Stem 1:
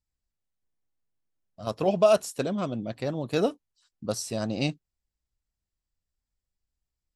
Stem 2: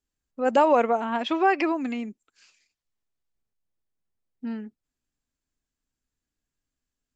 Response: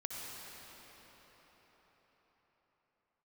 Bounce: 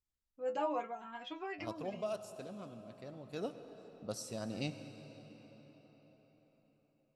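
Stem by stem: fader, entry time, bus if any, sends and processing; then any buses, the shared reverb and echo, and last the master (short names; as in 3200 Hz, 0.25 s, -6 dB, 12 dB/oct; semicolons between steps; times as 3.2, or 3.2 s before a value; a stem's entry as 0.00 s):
1.47 s -10.5 dB -> 1.97 s -22 dB -> 3.26 s -22 dB -> 3.58 s -14 dB, 0.00 s, send -5.5 dB, dry
-8.5 dB, 0.00 s, no send, metallic resonator 99 Hz, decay 0.26 s, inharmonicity 0.002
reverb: on, RT60 5.4 s, pre-delay 55 ms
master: dry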